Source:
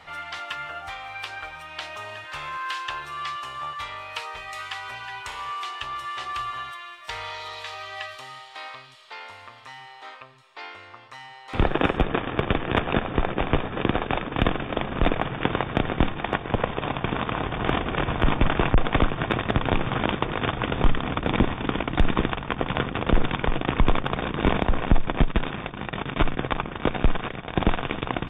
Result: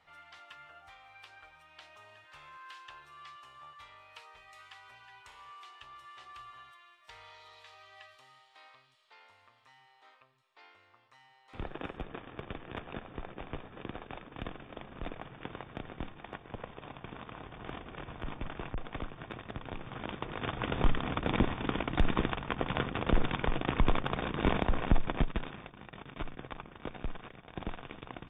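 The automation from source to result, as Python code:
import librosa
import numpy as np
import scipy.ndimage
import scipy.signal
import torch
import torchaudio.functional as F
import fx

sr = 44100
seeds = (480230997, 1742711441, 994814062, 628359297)

y = fx.gain(x, sr, db=fx.line((19.79, -19.0), (20.74, -7.0), (25.06, -7.0), (25.81, -17.5)))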